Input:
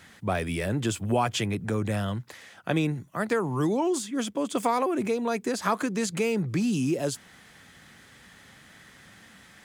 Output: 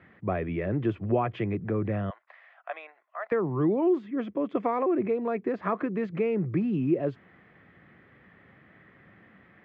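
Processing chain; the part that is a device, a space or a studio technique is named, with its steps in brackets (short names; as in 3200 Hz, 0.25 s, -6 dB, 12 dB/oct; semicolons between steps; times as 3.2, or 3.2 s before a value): 2.1–3.32 Chebyshev band-pass 650–7700 Hz, order 4; bass cabinet (speaker cabinet 81–2000 Hz, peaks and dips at 240 Hz -3 dB, 350 Hz +4 dB, 880 Hz -7 dB, 1500 Hz -7 dB)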